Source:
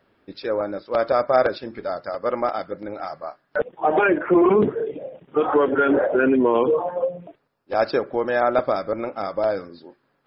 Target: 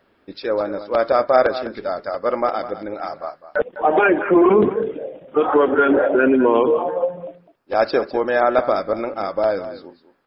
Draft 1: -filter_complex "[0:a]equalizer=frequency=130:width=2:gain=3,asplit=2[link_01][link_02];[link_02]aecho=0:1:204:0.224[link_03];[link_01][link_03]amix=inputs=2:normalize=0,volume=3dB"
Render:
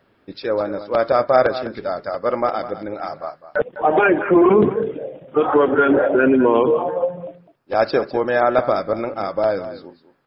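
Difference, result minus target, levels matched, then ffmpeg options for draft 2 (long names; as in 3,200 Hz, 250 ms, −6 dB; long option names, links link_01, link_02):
125 Hz band +4.5 dB
-filter_complex "[0:a]equalizer=frequency=130:width=2:gain=-6,asplit=2[link_01][link_02];[link_02]aecho=0:1:204:0.224[link_03];[link_01][link_03]amix=inputs=2:normalize=0,volume=3dB"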